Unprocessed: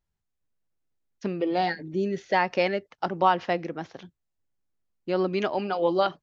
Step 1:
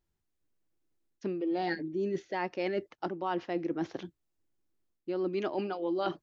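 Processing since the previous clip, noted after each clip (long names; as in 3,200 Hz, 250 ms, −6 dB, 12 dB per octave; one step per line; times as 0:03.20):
parametric band 330 Hz +11 dB 0.51 octaves
reversed playback
downward compressor 10 to 1, threshold −29 dBFS, peak gain reduction 15.5 dB
reversed playback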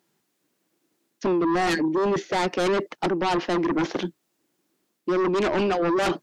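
high-pass filter 170 Hz 24 dB per octave
in parallel at −7 dB: sine wavefolder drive 13 dB, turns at −20 dBFS
on the sum: level +4 dB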